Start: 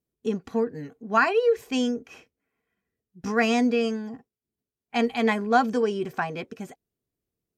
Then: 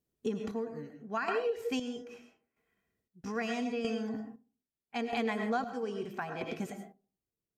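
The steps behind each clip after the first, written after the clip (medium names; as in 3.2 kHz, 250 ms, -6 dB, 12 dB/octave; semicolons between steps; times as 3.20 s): reverberation RT60 0.45 s, pre-delay 65 ms, DRR 6 dB; square tremolo 0.78 Hz, depth 65%, duty 40%; compression 4:1, threshold -31 dBFS, peak gain reduction 14 dB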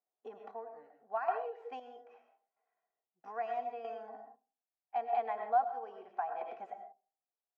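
ladder band-pass 810 Hz, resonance 70%; trim +6.5 dB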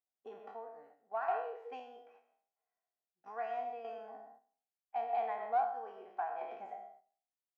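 spectral sustain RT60 0.55 s; in parallel at -10 dB: saturation -25.5 dBFS, distortion -15 dB; on the sum: gate -55 dBFS, range -7 dB; trim -5.5 dB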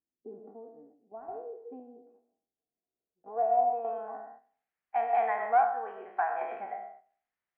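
low-pass sweep 300 Hz -> 1.9 kHz, 2.76–4.49 s; trim +6.5 dB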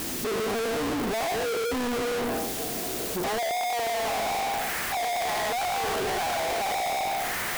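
one-bit comparator; trim +6 dB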